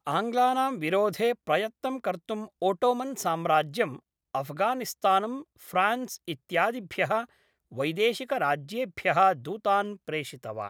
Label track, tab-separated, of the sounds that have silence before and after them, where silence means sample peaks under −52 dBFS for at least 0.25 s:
4.350000	7.260000	sound